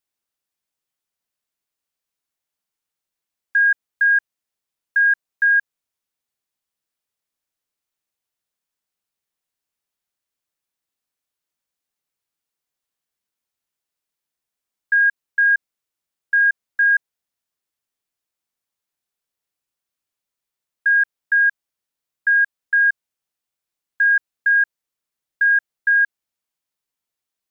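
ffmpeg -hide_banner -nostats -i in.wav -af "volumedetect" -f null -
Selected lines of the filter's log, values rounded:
mean_volume: -24.4 dB
max_volume: -11.4 dB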